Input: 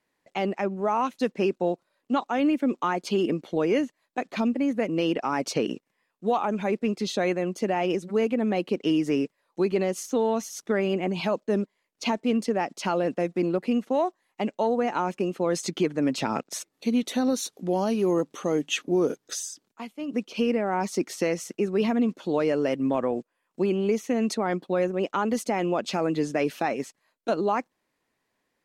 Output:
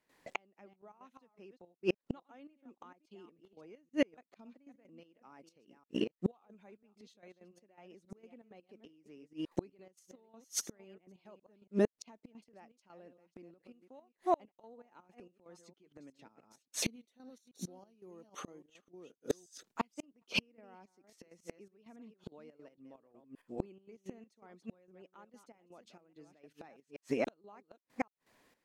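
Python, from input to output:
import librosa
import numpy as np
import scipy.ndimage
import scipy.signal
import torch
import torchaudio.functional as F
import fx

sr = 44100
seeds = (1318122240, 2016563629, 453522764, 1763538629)

y = fx.reverse_delay(x, sr, ms=278, wet_db=-10)
y = fx.gate_flip(y, sr, shuts_db=-25.0, range_db=-38)
y = fx.step_gate(y, sr, bpm=164, pattern='.xxx..xx.x.xx.', floor_db=-12.0, edge_ms=4.5)
y = y * librosa.db_to_amplitude(7.5)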